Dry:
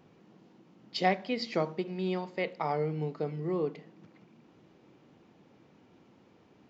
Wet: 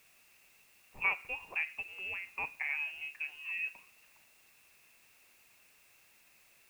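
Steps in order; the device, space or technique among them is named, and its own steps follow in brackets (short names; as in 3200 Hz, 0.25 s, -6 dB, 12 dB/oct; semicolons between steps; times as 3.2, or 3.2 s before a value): scrambled radio voice (BPF 390–2800 Hz; inverted band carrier 3000 Hz; white noise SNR 24 dB); gain -4 dB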